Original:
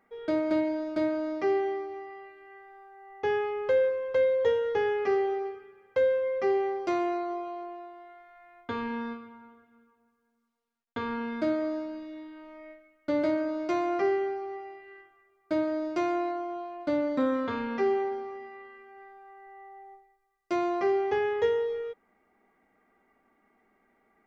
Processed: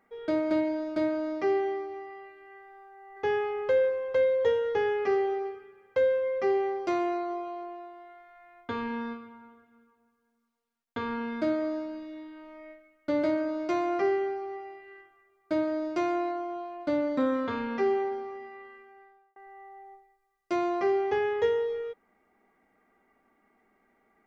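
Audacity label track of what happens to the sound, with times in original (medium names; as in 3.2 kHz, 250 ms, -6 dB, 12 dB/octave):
2.570000	3.040000	echo throw 590 ms, feedback 35%, level -1 dB
18.730000	19.360000	fade out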